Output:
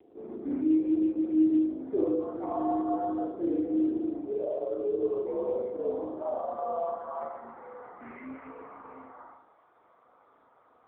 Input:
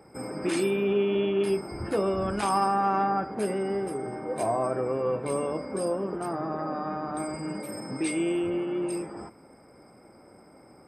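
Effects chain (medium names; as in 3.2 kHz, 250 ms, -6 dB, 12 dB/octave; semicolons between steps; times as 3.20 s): band-pass sweep 440 Hz -> 1.2 kHz, 4.55–8.08 s; 4.38–4.98 s: static phaser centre 1.5 kHz, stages 8; reverberation RT60 0.65 s, pre-delay 38 ms, DRR -2 dB; mistuned SSB -80 Hz 350–2200 Hz; AMR-NB 6.7 kbps 8 kHz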